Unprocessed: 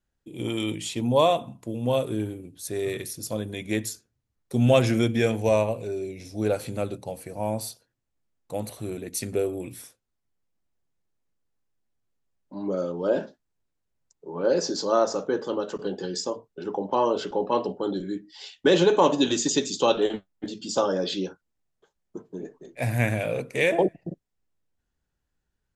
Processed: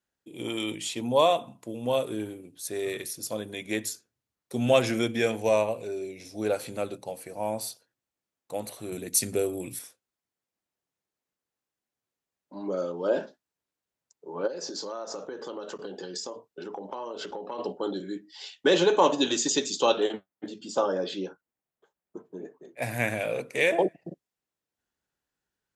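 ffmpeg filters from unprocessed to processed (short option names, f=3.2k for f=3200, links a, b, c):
-filter_complex "[0:a]asettb=1/sr,asplit=3[a][b][c];[a]atrim=end=8.924[d];[b]atrim=start=8.92:end=9.79,asetpts=PTS-STARTPTS,afade=t=in:d=0.004:c=qsin,afade=t=out:st=0.866:d=0.004:c=qsin,bass=f=250:g=8,treble=f=4k:g=8[e];[c]atrim=start=9.786[f];[d][e]acrossfade=d=0.004:c1=hsin:c2=qsin[g];[g][f]acrossfade=d=0.004:c1=qsin:c2=hsin,asplit=3[h][i][j];[h]afade=t=out:st=14.46:d=0.02[k];[i]acompressor=threshold=-30dB:ratio=12:attack=3.2:release=140:knee=1:detection=peak,afade=t=in:st=14.46:d=0.02,afade=t=out:st=17.58:d=0.02[l];[j]afade=t=in:st=17.58:d=0.02[m];[k][l][m]amix=inputs=3:normalize=0,asettb=1/sr,asplit=3[n][o][p];[n]atrim=end=20.124[q];[o]atrim=start=20.12:end=22.82,asetpts=PTS-STARTPTS,afade=t=in:d=0.004:c=qsin,afade=t=out:st=2.696:d=0.004:c=qsin,equalizer=f=5.3k:t=o:w=1.9:g=-8.5[r];[p]atrim=start=22.816[s];[q][r]acrossfade=d=0.004:c1=hsin:c2=qsin[t];[t][s]acrossfade=d=0.004:c1=qsin:c2=hsin,highpass=f=370:p=1"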